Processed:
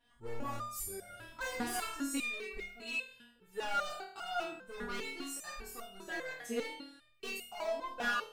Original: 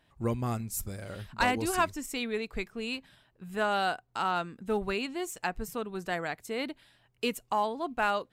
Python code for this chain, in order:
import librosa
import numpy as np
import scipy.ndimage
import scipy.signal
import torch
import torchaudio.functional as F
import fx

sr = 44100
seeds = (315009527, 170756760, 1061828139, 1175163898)

y = fx.room_flutter(x, sr, wall_m=4.4, rt60_s=0.59)
y = np.clip(10.0 ** (27.0 / 20.0) * y, -1.0, 1.0) / 10.0 ** (27.0 / 20.0)
y = fx.resonator_held(y, sr, hz=5.0, low_hz=240.0, high_hz=710.0)
y = y * librosa.db_to_amplitude(9.0)